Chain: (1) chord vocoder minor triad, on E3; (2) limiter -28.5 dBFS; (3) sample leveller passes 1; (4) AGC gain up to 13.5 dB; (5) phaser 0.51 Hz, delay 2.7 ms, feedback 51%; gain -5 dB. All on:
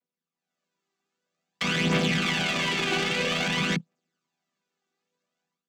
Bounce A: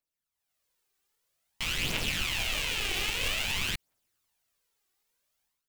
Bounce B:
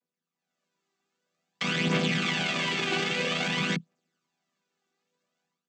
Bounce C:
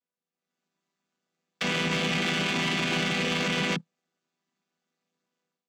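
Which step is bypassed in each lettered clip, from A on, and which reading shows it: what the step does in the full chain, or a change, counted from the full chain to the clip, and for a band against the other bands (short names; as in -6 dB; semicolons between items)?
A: 1, 8 kHz band +10.5 dB; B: 3, crest factor change +2.0 dB; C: 5, crest factor change -4.0 dB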